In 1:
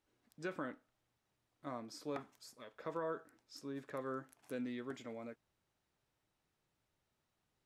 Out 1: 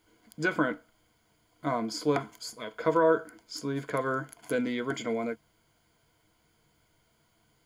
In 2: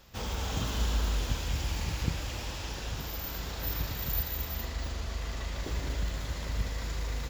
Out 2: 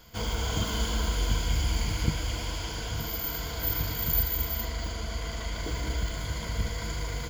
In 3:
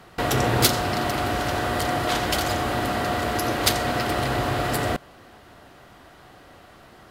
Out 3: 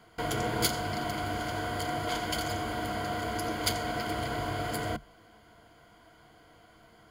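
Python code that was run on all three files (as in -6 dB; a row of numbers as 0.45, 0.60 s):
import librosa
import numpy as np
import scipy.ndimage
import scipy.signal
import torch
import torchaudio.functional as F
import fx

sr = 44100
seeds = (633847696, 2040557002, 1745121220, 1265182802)

y = fx.ripple_eq(x, sr, per_octave=1.8, db=11)
y = y * 10.0 ** (-12 / 20.0) / np.max(np.abs(y))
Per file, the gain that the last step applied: +14.0, +2.0, -10.5 dB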